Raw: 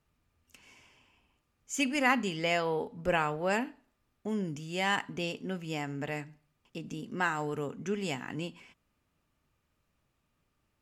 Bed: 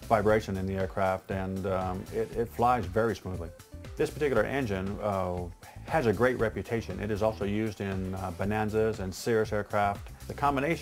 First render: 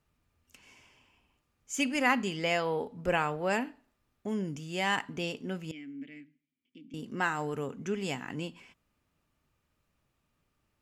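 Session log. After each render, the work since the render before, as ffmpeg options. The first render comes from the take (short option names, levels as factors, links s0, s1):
-filter_complex "[0:a]asettb=1/sr,asplit=3[s0][s1][s2];[s0]atrim=end=5.714[s3];[s1]atrim=start=5.71:end=6.94,asetpts=PTS-STARTPTS,afade=t=in:d=0.004:c=qsin,afade=t=out:st=1.226:d=0.004:c=qsin,asplit=3[s4][s5][s6];[s4]bandpass=f=270:t=q:w=8,volume=1[s7];[s5]bandpass=f=2290:t=q:w=8,volume=0.501[s8];[s6]bandpass=f=3010:t=q:w=8,volume=0.355[s9];[s7][s8][s9]amix=inputs=3:normalize=0[s10];[s2]atrim=start=6.936[s11];[s3][s10]acrossfade=d=0.004:c1=hsin:c2=qsin[s12];[s12][s11]acrossfade=d=0.004:c1=qsin:c2=hsin"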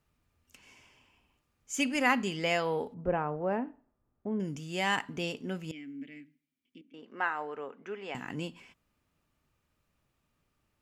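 -filter_complex "[0:a]asettb=1/sr,asplit=3[s0][s1][s2];[s0]atrim=end=2.944[s3];[s1]atrim=start=2.94:end=4.4,asetpts=PTS-STARTPTS,afade=t=in:d=0.004:c=qsin,afade=t=out:st=1.456:d=0.004:c=qsin,lowpass=1000[s4];[s2]atrim=start=4.396[s5];[s3][s4]acrossfade=d=0.004:c1=hsin:c2=qsin[s6];[s6][s5]acrossfade=d=0.004:c1=qsin:c2=hsin,asettb=1/sr,asplit=3[s7][s8][s9];[s7]atrim=end=6.814[s10];[s8]atrim=start=6.81:end=8.15,asetpts=PTS-STARTPTS,afade=t=in:d=0.004:c=qsin,afade=t=out:st=1.336:d=0.004:c=qsin,highpass=500,lowpass=2200[s11];[s9]atrim=start=8.146[s12];[s10][s11]acrossfade=d=0.004:c1=hsin:c2=qsin[s13];[s13][s12]acrossfade=d=0.004:c1=qsin:c2=hsin"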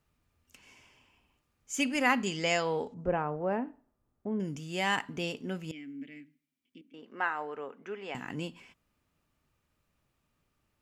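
-filter_complex "[0:a]asettb=1/sr,asplit=3[s0][s1][s2];[s0]atrim=end=2.264[s3];[s1]atrim=start=2.26:end=3.22,asetpts=PTS-STARTPTS,afade=t=in:d=0.004:c=qsin,afade=t=out:st=0.956:d=0.004:c=qsin,lowpass=f=6900:t=q:w=2.7[s4];[s2]atrim=start=3.216[s5];[s3][s4]acrossfade=d=0.004:c1=hsin:c2=qsin[s6];[s6][s5]acrossfade=d=0.004:c1=qsin:c2=hsin"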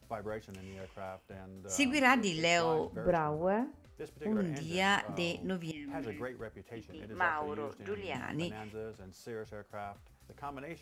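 -filter_complex "[1:a]volume=0.158[s0];[0:a][s0]amix=inputs=2:normalize=0"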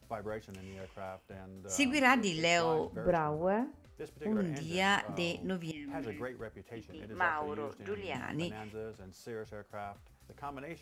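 -af anull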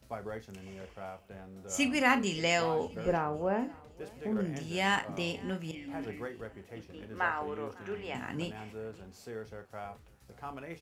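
-filter_complex "[0:a]asplit=2[s0][s1];[s1]adelay=36,volume=0.282[s2];[s0][s2]amix=inputs=2:normalize=0,aecho=1:1:550|1100|1650:0.0708|0.0311|0.0137"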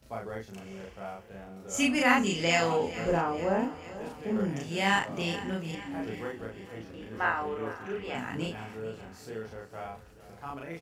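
-filter_complex "[0:a]asplit=2[s0][s1];[s1]adelay=36,volume=0.75[s2];[s0][s2]amix=inputs=2:normalize=0,aecho=1:1:443|886|1329|1772|2215|2658:0.158|0.0919|0.0533|0.0309|0.0179|0.0104"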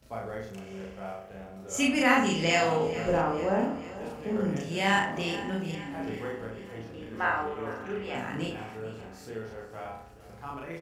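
-filter_complex "[0:a]asplit=2[s0][s1];[s1]adelay=62,lowpass=f=1900:p=1,volume=0.562,asplit=2[s2][s3];[s3]adelay=62,lowpass=f=1900:p=1,volume=0.52,asplit=2[s4][s5];[s5]adelay=62,lowpass=f=1900:p=1,volume=0.52,asplit=2[s6][s7];[s7]adelay=62,lowpass=f=1900:p=1,volume=0.52,asplit=2[s8][s9];[s9]adelay=62,lowpass=f=1900:p=1,volume=0.52,asplit=2[s10][s11];[s11]adelay=62,lowpass=f=1900:p=1,volume=0.52,asplit=2[s12][s13];[s13]adelay=62,lowpass=f=1900:p=1,volume=0.52[s14];[s0][s2][s4][s6][s8][s10][s12][s14]amix=inputs=8:normalize=0"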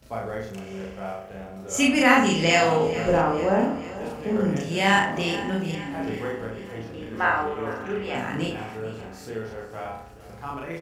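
-af "volume=1.88"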